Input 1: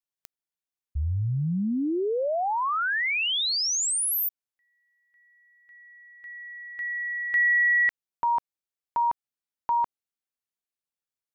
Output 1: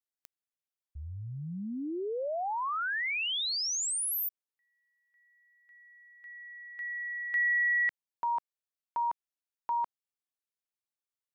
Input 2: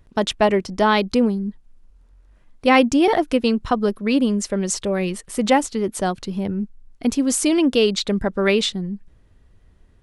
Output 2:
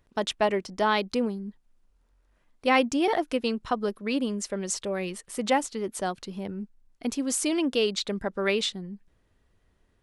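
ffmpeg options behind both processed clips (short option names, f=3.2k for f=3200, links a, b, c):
-af "lowshelf=f=210:g=-9.5,volume=-6dB"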